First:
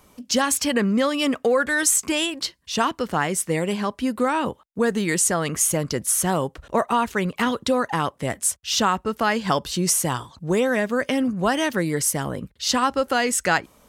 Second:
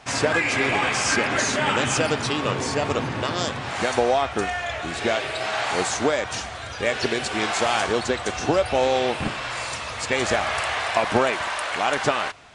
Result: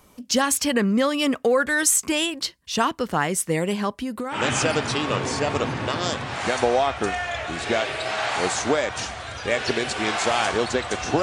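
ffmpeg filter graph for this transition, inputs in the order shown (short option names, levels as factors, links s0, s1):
-filter_complex "[0:a]asettb=1/sr,asplit=3[s0][s1][s2];[s0]atrim=end=3.934[s3];[s1]atrim=start=3.93:end=4.44,asetpts=PTS-STARTPTS,afade=t=in:d=0.004:c=qsin,afade=t=out:st=0.506:d=0.004:c=qsin,acompressor=threshold=0.0631:ratio=12:attack=3.2:release=140:knee=1:detection=peak[s4];[s2]atrim=start=4.436[s5];[s3][s4]acrossfade=d=0.004:c1=hsin:c2=qsin[s6];[s6][s5]acrossfade=d=0.004:c1=qsin:c2=hsin,apad=whole_dur=11.22,atrim=end=11.22,atrim=end=4.44,asetpts=PTS-STARTPTS[s7];[1:a]atrim=start=1.65:end=8.57,asetpts=PTS-STARTPTS[s8];[s7][s8]acrossfade=d=0.14:c1=tri:c2=tri"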